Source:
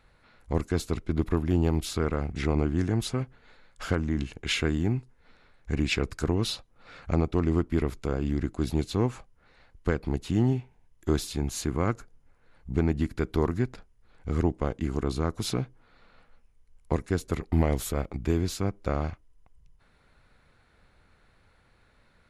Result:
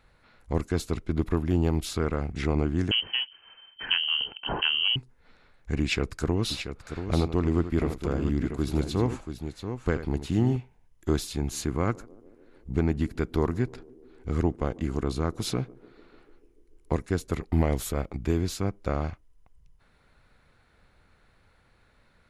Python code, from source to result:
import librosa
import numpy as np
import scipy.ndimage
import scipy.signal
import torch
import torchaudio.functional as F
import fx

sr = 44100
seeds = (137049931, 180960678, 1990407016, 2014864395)

y = fx.freq_invert(x, sr, carrier_hz=3100, at=(2.91, 4.96))
y = fx.echo_multitap(y, sr, ms=(83, 683), db=(-12.0, -8.5), at=(6.5, 10.55), fade=0.02)
y = fx.echo_banded(y, sr, ms=147, feedback_pct=78, hz=370.0, wet_db=-21.5, at=(11.28, 17.0))